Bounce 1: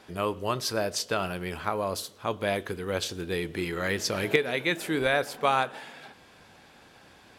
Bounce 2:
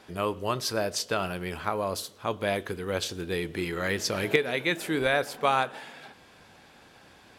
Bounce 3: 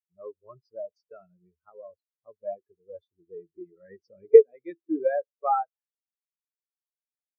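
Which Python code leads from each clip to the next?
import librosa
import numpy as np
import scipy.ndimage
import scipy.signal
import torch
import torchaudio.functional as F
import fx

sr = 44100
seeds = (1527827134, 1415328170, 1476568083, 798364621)

y1 = x
y2 = fx.spectral_expand(y1, sr, expansion=4.0)
y2 = y2 * 10.0 ** (6.0 / 20.0)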